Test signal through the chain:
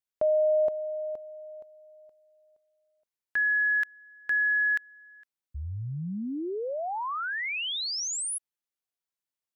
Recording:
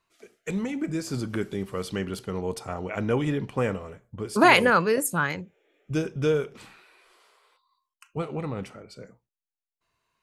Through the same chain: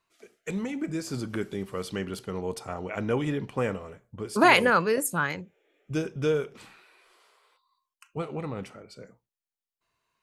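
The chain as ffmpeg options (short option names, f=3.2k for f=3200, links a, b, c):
-af "lowshelf=f=140:g=-3.5,volume=-1.5dB"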